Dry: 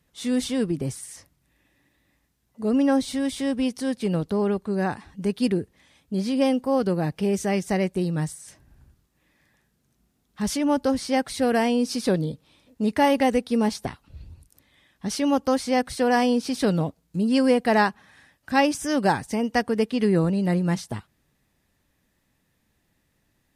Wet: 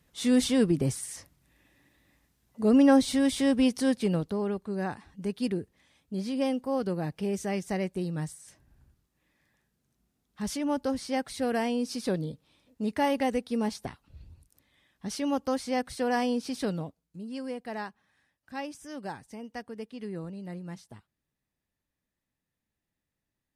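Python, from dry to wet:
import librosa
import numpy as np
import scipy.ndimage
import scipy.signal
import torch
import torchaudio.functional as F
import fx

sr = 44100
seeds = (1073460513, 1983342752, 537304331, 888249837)

y = fx.gain(x, sr, db=fx.line((3.89, 1.0), (4.39, -7.0), (16.57, -7.0), (17.19, -17.0)))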